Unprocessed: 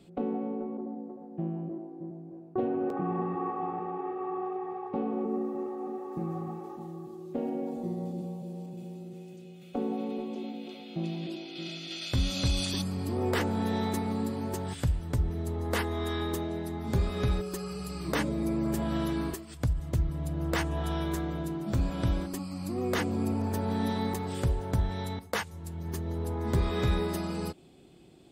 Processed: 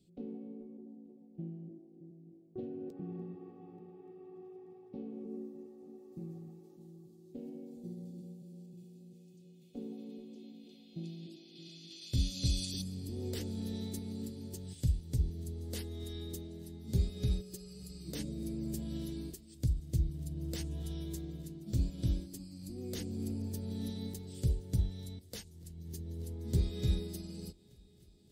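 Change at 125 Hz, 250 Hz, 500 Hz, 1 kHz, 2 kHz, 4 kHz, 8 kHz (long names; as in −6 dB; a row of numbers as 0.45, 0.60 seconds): −5.0, −9.5, −13.5, −27.0, −20.5, −7.5, −4.5 decibels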